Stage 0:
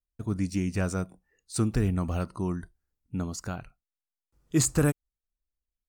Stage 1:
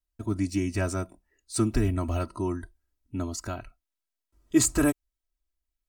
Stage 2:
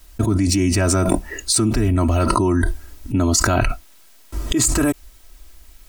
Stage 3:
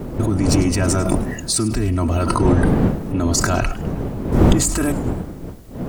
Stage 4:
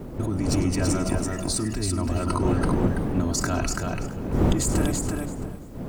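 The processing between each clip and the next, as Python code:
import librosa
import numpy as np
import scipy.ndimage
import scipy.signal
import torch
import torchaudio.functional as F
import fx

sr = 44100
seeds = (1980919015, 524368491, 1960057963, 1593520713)

y1 = x + 0.83 * np.pad(x, (int(3.1 * sr / 1000.0), 0))[:len(x)]
y2 = fx.env_flatten(y1, sr, amount_pct=100)
y2 = y2 * 10.0 ** (-1.0 / 20.0)
y3 = fx.dmg_wind(y2, sr, seeds[0], corner_hz=270.0, level_db=-19.0)
y3 = fx.echo_warbled(y3, sr, ms=106, feedback_pct=47, rate_hz=2.8, cents=214, wet_db=-16)
y3 = y3 * 10.0 ** (-2.0 / 20.0)
y4 = fx.echo_feedback(y3, sr, ms=334, feedback_pct=16, wet_db=-3.5)
y4 = y4 * 10.0 ** (-8.0 / 20.0)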